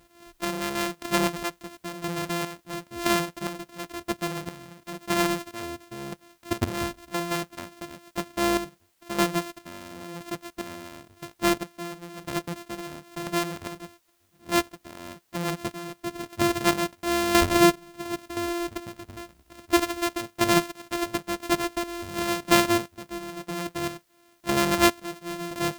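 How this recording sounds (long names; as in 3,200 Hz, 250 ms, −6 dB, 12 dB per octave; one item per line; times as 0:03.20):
a buzz of ramps at a fixed pitch in blocks of 128 samples
chopped level 0.98 Hz, depth 65%, duty 40%
a quantiser's noise floor 12 bits, dither triangular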